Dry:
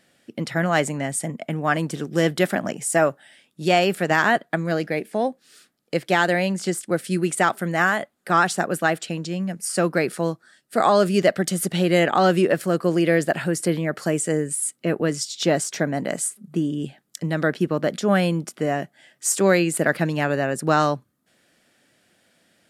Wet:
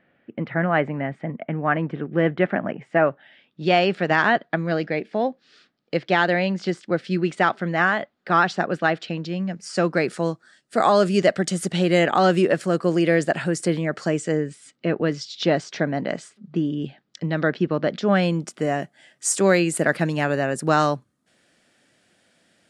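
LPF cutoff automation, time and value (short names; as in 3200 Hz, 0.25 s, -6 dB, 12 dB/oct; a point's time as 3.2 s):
LPF 24 dB/oct
2.8 s 2400 Hz
3.79 s 4800 Hz
9.29 s 4800 Hz
10.22 s 8400 Hz
13.85 s 8400 Hz
14.55 s 4800 Hz
17.97 s 4800 Hz
18.62 s 10000 Hz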